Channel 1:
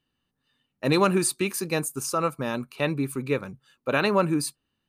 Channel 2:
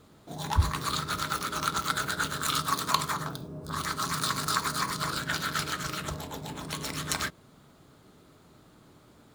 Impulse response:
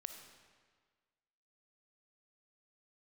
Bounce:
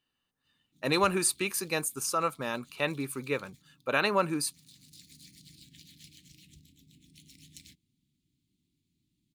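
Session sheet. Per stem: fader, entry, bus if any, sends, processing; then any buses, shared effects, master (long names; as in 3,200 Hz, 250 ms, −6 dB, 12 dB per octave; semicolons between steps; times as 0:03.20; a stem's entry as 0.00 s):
−1.0 dB, 0.00 s, no send, low-shelf EQ 480 Hz −9 dB
−19.5 dB, 0.45 s, no send, inverse Chebyshev band-stop filter 490–1,500 Hz, stop band 40 dB; automatic ducking −8 dB, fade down 1.20 s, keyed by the first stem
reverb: not used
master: no processing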